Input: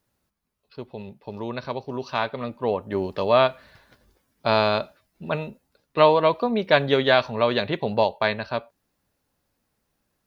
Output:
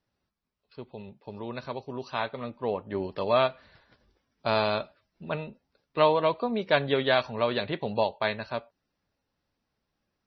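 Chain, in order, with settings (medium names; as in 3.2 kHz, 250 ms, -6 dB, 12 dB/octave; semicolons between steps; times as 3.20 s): trim -5 dB; MP3 24 kbps 24 kHz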